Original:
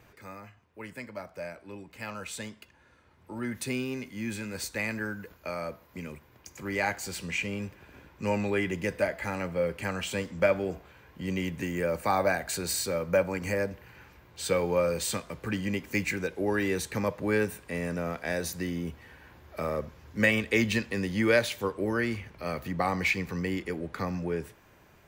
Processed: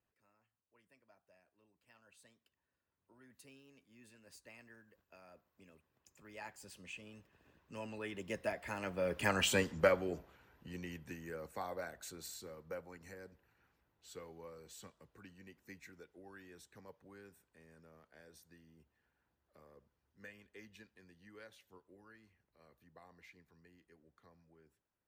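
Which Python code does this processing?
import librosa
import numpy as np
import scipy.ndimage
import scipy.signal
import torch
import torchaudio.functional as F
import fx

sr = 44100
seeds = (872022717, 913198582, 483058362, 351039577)

y = fx.doppler_pass(x, sr, speed_mps=21, closest_m=6.0, pass_at_s=9.45)
y = fx.notch(y, sr, hz=2200.0, q=13.0)
y = fx.hpss(y, sr, part='harmonic', gain_db=-7)
y = y * librosa.db_to_amplitude(3.5)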